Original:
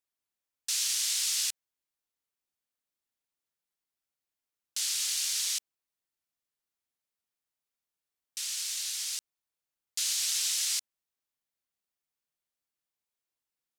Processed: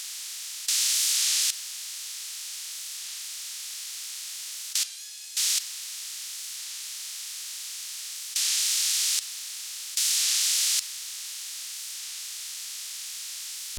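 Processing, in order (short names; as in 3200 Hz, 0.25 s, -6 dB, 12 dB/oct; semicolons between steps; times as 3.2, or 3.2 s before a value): per-bin compression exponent 0.2; 4.84–5.37 resonator 850 Hz, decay 0.34 s, mix 90%; reverb RT60 0.90 s, pre-delay 5 ms, DRR 11.5 dB; record warp 33 1/3 rpm, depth 100 cents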